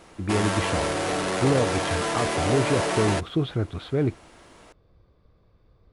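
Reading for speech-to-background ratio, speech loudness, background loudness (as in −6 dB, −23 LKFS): −1.0 dB, −27.0 LKFS, −26.0 LKFS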